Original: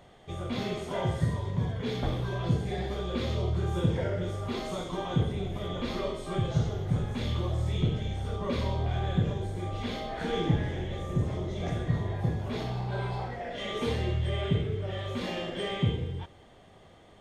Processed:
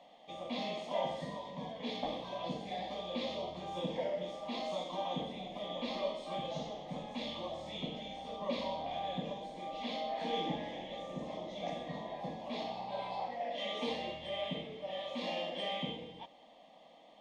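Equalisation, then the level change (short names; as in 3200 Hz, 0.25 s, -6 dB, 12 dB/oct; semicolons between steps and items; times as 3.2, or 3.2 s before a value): three-band isolator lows -16 dB, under 190 Hz, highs -22 dB, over 5100 Hz; low shelf 260 Hz -10.5 dB; fixed phaser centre 390 Hz, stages 6; +2.0 dB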